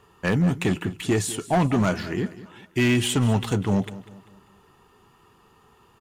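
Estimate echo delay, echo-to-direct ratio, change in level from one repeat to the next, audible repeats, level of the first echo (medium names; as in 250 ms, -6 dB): 196 ms, -15.5 dB, -7.5 dB, 3, -16.5 dB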